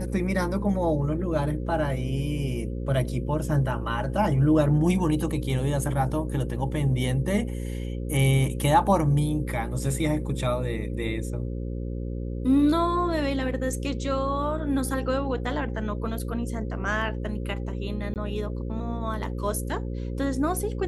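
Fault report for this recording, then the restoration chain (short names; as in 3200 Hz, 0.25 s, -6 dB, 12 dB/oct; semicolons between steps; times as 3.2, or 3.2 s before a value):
buzz 60 Hz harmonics 9 -31 dBFS
18.14–18.16 gap 18 ms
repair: de-hum 60 Hz, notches 9; interpolate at 18.14, 18 ms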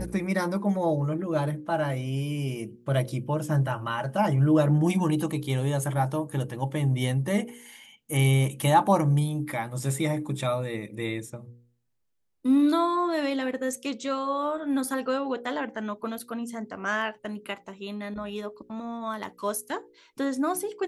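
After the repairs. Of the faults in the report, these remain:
none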